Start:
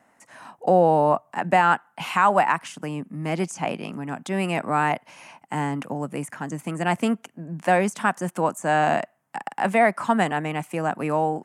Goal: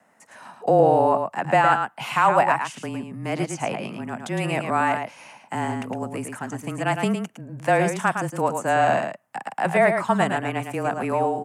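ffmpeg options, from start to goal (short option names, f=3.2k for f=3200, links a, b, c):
-filter_complex "[0:a]acrossover=split=130|550|2300[a][b][c][d];[a]acrusher=bits=3:mix=0:aa=0.5[e];[e][b][c][d]amix=inputs=4:normalize=0,afreqshift=-26,aecho=1:1:110:0.473"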